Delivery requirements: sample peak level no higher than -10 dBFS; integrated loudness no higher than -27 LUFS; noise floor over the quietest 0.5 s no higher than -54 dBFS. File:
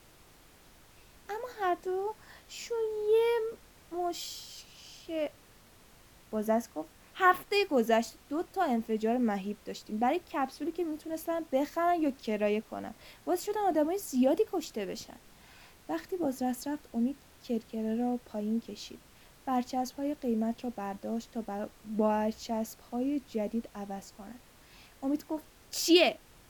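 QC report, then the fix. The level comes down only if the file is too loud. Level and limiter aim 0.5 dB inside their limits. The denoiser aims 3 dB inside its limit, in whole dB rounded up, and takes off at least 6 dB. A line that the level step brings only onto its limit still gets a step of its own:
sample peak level -9.5 dBFS: fail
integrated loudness -32.0 LUFS: OK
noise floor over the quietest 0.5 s -58 dBFS: OK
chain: limiter -10.5 dBFS

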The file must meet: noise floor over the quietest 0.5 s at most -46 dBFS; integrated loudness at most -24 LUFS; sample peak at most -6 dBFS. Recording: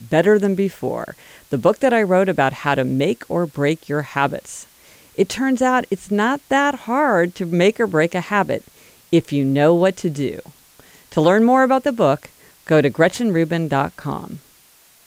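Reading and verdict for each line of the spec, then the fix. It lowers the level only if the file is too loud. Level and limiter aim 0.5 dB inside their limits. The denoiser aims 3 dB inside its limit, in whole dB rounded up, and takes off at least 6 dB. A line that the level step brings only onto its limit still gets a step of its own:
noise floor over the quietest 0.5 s -52 dBFS: OK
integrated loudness -18.5 LUFS: fail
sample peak -4.0 dBFS: fail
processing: gain -6 dB

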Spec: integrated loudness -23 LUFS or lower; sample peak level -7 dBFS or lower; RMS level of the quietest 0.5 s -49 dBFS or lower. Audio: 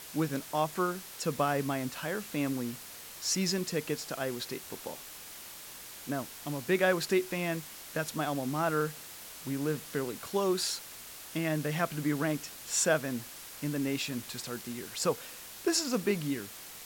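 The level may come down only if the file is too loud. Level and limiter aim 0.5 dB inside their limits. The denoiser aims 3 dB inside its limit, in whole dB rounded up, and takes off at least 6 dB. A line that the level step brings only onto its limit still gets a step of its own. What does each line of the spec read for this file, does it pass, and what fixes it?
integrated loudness -32.5 LUFS: OK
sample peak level -14.5 dBFS: OK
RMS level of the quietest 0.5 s -47 dBFS: fail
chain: denoiser 6 dB, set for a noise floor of -47 dBFS

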